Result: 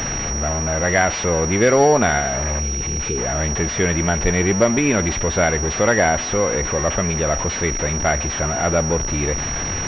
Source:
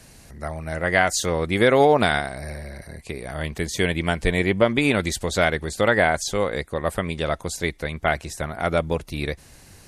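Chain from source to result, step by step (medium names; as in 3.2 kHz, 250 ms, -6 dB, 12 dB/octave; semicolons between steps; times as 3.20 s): jump at every zero crossing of -19.5 dBFS; spectral selection erased 2.59–3.18 s, 510–2200 Hz; on a send at -20 dB: reverberation RT60 2.6 s, pre-delay 4 ms; on the sum: class-D stage that switches slowly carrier 5.7 kHz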